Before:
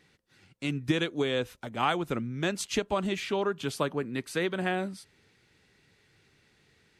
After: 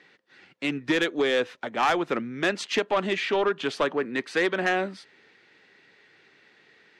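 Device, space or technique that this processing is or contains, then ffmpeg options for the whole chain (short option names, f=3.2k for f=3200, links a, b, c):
intercom: -af "highpass=310,lowpass=3.9k,equalizer=f=1.8k:t=o:w=0.28:g=5,asoftclip=type=tanh:threshold=-24dB,volume=8dB"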